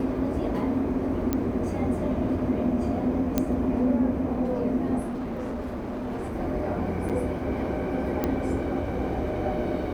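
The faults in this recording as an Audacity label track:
1.330000	1.330000	pop -12 dBFS
3.380000	3.380000	pop -9 dBFS
5.000000	6.360000	clipped -28.5 dBFS
7.090000	7.100000	gap 7.1 ms
8.240000	8.240000	pop -13 dBFS

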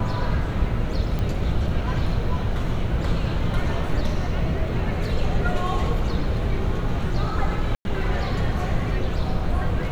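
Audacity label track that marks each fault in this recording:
1.190000	1.190000	pop -16 dBFS
7.750000	7.850000	gap 0.101 s

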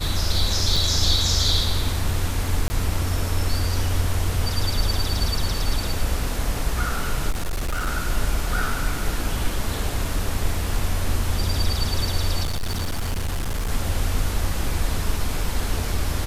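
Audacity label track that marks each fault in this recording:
0.760000	0.760000	gap 3.8 ms
2.680000	2.700000	gap 20 ms
7.300000	7.880000	clipped -21 dBFS
12.430000	13.710000	clipped -21 dBFS

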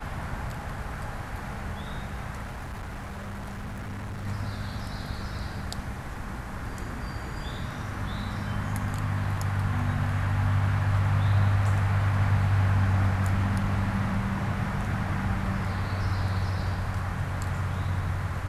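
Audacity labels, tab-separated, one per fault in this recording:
2.420000	4.270000	clipped -32.5 dBFS

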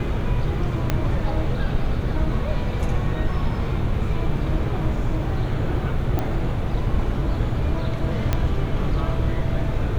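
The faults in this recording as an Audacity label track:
0.900000	0.900000	pop -7 dBFS
6.190000	6.190000	pop -12 dBFS
8.330000	8.330000	pop -8 dBFS

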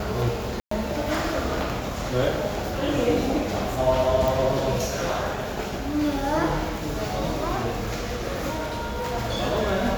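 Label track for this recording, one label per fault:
0.600000	0.710000	gap 0.114 s
4.280000	4.280000	pop
8.540000	9.150000	clipped -24.5 dBFS

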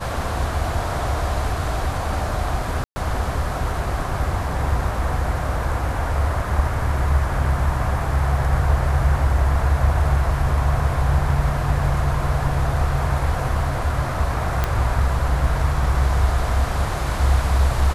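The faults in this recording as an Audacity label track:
2.840000	2.960000	gap 0.12 s
14.640000	14.640000	pop -7 dBFS

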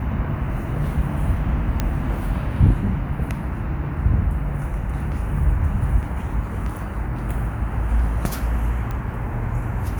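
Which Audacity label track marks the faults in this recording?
1.800000	1.800000	pop -8 dBFS
8.910000	8.910000	pop -17 dBFS

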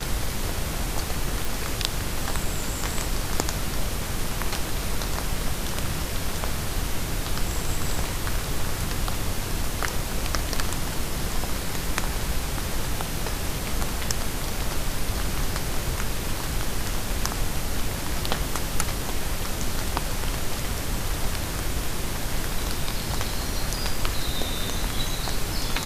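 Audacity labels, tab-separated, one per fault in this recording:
1.450000	1.450000	pop

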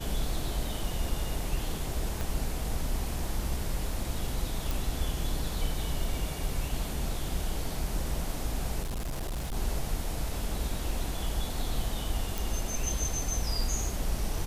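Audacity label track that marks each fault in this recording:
2.210000	2.210000	pop
4.710000	4.710000	pop
8.820000	9.560000	clipped -30 dBFS
12.380000	12.380000	pop

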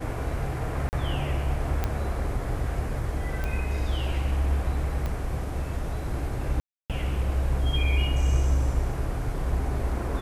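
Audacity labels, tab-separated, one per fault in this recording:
0.890000	0.930000	gap 39 ms
1.840000	1.840000	pop -13 dBFS
3.440000	3.440000	pop -18 dBFS
5.060000	5.060000	pop -18 dBFS
6.600000	6.900000	gap 0.297 s

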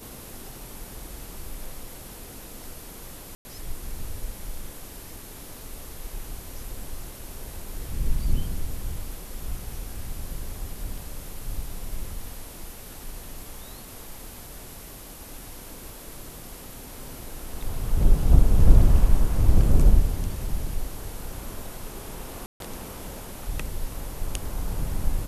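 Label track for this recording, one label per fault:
3.350000	3.450000	gap 0.1 s
22.460000	22.600000	gap 0.142 s

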